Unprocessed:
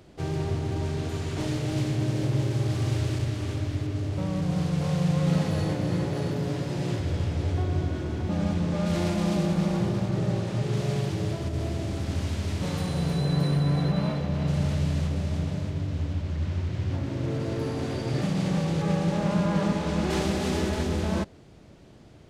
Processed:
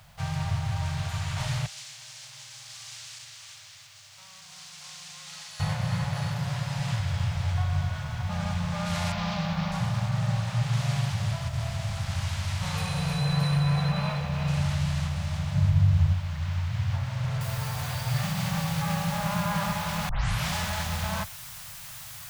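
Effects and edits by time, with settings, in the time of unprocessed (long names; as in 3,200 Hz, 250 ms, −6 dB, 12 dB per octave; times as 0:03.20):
0:01.66–0:05.60: resonant band-pass 6,500 Hz, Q 1
0:09.12–0:09.72: low-pass filter 5,300 Hz 24 dB per octave
0:12.74–0:14.61: hollow resonant body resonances 460/2,500 Hz, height 12 dB
0:15.55–0:16.14: low-shelf EQ 340 Hz +10 dB
0:17.41: noise floor change −69 dB −46 dB
0:20.09: tape start 0.44 s
whole clip: Chebyshev band-stop filter 120–900 Hz, order 2; parametric band 73 Hz −14 dB 0.33 octaves; level +4.5 dB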